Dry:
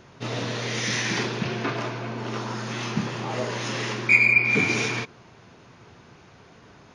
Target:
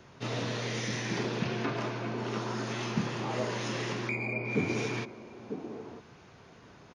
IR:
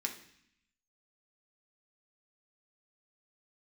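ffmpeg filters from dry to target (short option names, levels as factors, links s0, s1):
-filter_complex "[0:a]acrossover=split=180|880[s0][s1][s2];[s1]aecho=1:1:947:0.501[s3];[s2]acompressor=threshold=0.0251:ratio=6[s4];[s0][s3][s4]amix=inputs=3:normalize=0,volume=0.631"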